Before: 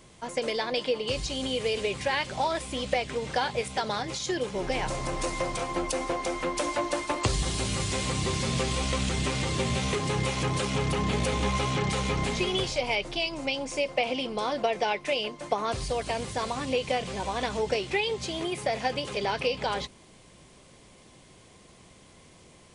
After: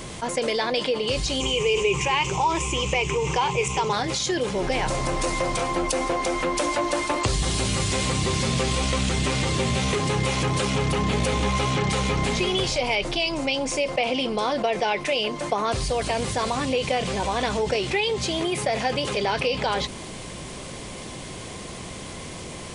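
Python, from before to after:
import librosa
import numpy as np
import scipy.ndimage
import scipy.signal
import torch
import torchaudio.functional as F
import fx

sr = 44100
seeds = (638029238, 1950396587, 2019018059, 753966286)

y = fx.ripple_eq(x, sr, per_octave=0.73, db=16, at=(1.4, 3.93))
y = fx.env_flatten(y, sr, amount_pct=50)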